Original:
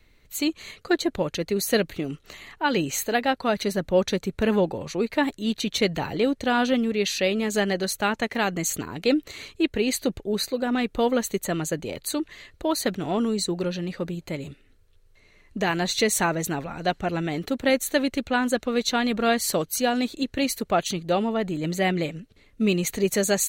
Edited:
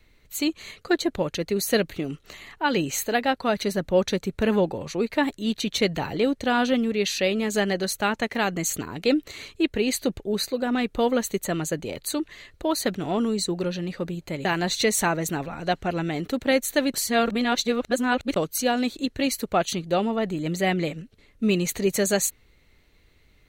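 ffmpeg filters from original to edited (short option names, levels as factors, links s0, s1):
-filter_complex "[0:a]asplit=4[s0][s1][s2][s3];[s0]atrim=end=14.452[s4];[s1]atrim=start=15.628:end=18.122[s5];[s2]atrim=start=18.118:end=19.542,asetpts=PTS-STARTPTS,areverse[s6];[s3]atrim=start=19.538[s7];[s4][s5]acrossfade=d=0.004:c1=hsin:c2=hsin[s8];[s8][s6]acrossfade=d=0.004:c1=hsin:c2=hsin[s9];[s9][s7]acrossfade=d=0.004:c1=hsin:c2=hsin"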